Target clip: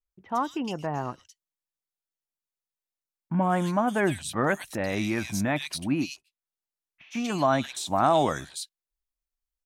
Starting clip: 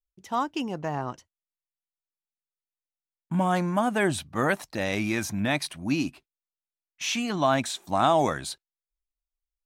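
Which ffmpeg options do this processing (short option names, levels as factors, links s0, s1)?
-filter_complex "[0:a]asplit=3[s0][s1][s2];[s0]afade=t=out:st=6.04:d=0.02[s3];[s1]acompressor=threshold=0.00501:ratio=5,afade=t=in:st=6.04:d=0.02,afade=t=out:st=7.13:d=0.02[s4];[s2]afade=t=in:st=7.13:d=0.02[s5];[s3][s4][s5]amix=inputs=3:normalize=0,acrossover=split=2600[s6][s7];[s7]adelay=110[s8];[s6][s8]amix=inputs=2:normalize=0"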